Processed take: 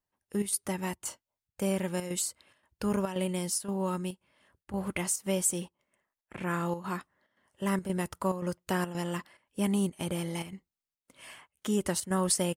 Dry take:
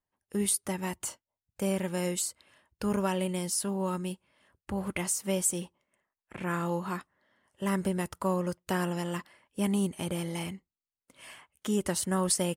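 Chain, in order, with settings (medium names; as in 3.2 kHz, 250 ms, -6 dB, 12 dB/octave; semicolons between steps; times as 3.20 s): square tremolo 1.9 Hz, depth 60%, duty 80%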